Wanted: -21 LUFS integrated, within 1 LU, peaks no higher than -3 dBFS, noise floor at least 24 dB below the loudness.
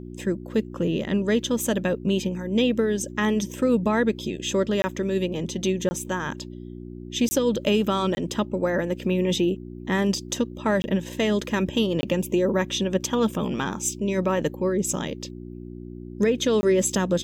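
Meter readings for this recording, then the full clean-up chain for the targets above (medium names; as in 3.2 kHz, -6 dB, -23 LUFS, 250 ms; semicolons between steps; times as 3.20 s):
dropouts 7; longest dropout 20 ms; hum 60 Hz; highest harmonic 360 Hz; hum level -36 dBFS; loudness -24.5 LUFS; peak level -10.0 dBFS; loudness target -21.0 LUFS
-> interpolate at 4.82/5.89/7.29/8.15/10.82/12.01/16.61 s, 20 ms; de-hum 60 Hz, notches 6; trim +3.5 dB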